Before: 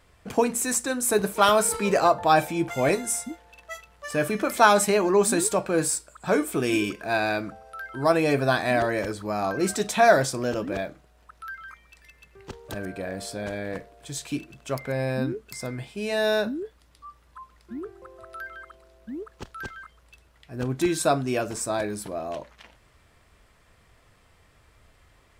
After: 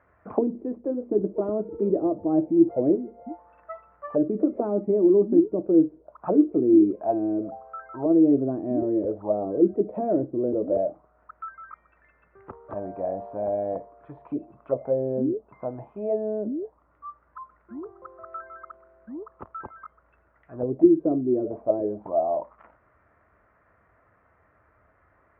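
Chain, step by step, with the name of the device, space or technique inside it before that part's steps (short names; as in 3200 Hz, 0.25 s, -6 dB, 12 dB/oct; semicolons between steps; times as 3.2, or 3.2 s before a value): envelope filter bass rig (envelope low-pass 330–1600 Hz down, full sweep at -21.5 dBFS; speaker cabinet 68–2200 Hz, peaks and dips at 140 Hz -4 dB, 310 Hz +3 dB, 620 Hz +6 dB, 1600 Hz -7 dB); gain -4.5 dB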